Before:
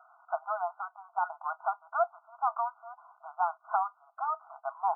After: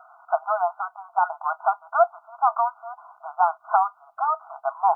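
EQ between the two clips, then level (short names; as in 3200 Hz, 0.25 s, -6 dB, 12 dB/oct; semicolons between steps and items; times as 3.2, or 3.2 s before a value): low shelf 500 Hz +9 dB; +7.0 dB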